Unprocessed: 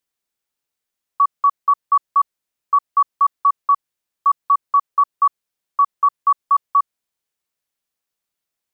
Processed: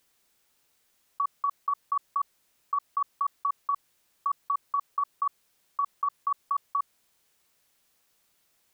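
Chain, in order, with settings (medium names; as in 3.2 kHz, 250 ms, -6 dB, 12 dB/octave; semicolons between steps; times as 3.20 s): compressor with a negative ratio -26 dBFS, ratio -1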